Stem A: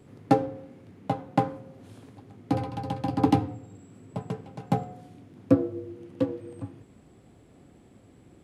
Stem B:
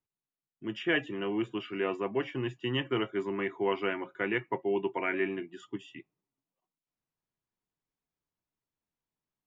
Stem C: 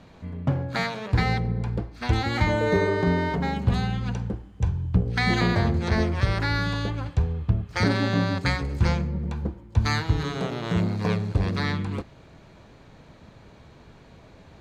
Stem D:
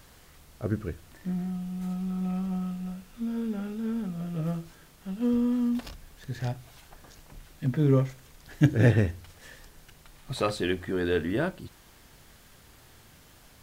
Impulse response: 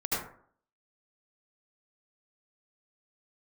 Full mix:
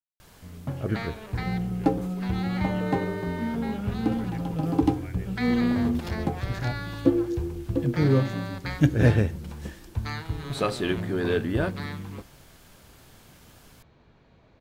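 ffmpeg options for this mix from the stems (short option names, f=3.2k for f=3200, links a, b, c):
-filter_complex "[0:a]equalizer=f=340:t=o:w=0.35:g=14,adelay=1550,volume=-6dB[a];[1:a]volume=-17dB[b];[2:a]lowpass=5k,adelay=200,volume=-8.5dB[c];[3:a]bandreject=f=1.9k:w=17,adelay=200,volume=1dB[d];[a][b][c][d]amix=inputs=4:normalize=0"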